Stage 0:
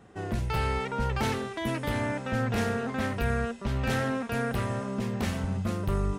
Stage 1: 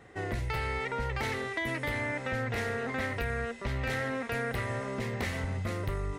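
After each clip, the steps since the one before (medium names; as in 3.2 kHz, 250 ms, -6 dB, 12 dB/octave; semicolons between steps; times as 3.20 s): graphic EQ with 31 bands 200 Hz -11 dB, 500 Hz +3 dB, 2 kHz +12 dB, 4 kHz +3 dB; compression, threshold -29 dBFS, peak gain reduction 7 dB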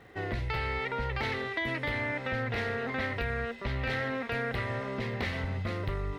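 resonant high shelf 5.6 kHz -10.5 dB, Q 1.5; crackle 550 per s -60 dBFS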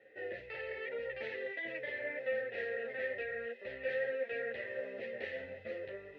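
vowel filter e; three-phase chorus; trim +6 dB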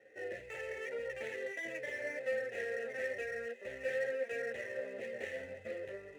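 median filter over 9 samples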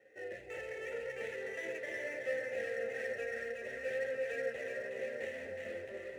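two-band feedback delay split 830 Hz, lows 249 ms, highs 368 ms, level -3.5 dB; trim -2 dB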